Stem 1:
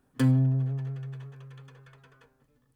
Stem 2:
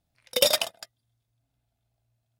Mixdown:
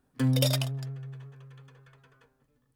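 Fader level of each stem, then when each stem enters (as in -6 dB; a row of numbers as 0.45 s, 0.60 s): -3.0 dB, -8.0 dB; 0.00 s, 0.00 s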